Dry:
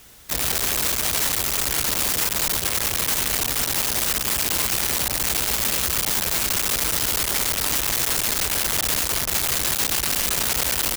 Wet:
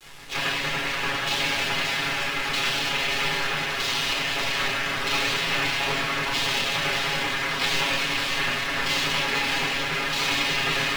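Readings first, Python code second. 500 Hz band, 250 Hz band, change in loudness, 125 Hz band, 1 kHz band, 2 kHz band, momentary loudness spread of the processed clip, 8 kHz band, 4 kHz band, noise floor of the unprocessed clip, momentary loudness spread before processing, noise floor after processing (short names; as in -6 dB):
+1.0 dB, 0.0 dB, -4.0 dB, -2.0 dB, +2.5 dB, +5.0 dB, 3 LU, -13.5 dB, +1.0 dB, -27 dBFS, 1 LU, -28 dBFS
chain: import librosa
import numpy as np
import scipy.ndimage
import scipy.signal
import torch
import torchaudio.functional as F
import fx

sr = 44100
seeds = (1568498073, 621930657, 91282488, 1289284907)

y = fx.high_shelf(x, sr, hz=5200.0, db=11.5)
y = fx.filter_lfo_lowpass(y, sr, shape='saw_down', hz=0.79, low_hz=950.0, high_hz=2100.0, q=1.1)
y = fx.hum_notches(y, sr, base_hz=50, count=2)
y = fx.spec_gate(y, sr, threshold_db=-10, keep='weak')
y = fx.echo_alternate(y, sr, ms=291, hz=880.0, feedback_pct=73, wet_db=-3.0)
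y = fx.dmg_noise_colour(y, sr, seeds[0], colour='pink', level_db=-59.0)
y = y + 0.94 * np.pad(y, (int(7.3 * sr / 1000.0), 0))[:len(y)]
y = fx.quant_dither(y, sr, seeds[1], bits=8, dither='none')
y = fx.peak_eq(y, sr, hz=2900.0, db=5.0, octaves=1.9)
y = fx.room_shoebox(y, sr, seeds[2], volume_m3=800.0, walls='furnished', distance_m=4.0)
y = np.interp(np.arange(len(y)), np.arange(len(y))[::2], y[::2])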